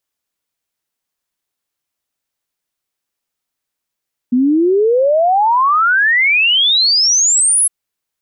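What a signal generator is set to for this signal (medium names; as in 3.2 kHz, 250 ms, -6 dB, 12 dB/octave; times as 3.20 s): log sweep 240 Hz -> 11 kHz 3.36 s -9 dBFS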